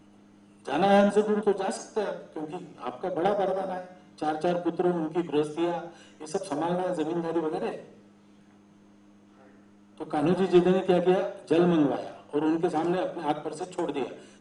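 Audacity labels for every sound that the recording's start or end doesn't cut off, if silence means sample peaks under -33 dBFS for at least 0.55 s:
0.680000	7.790000	sound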